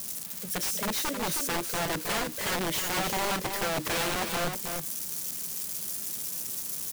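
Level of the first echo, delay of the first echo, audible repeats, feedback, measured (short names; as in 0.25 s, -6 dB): -6.0 dB, 0.317 s, 1, no steady repeat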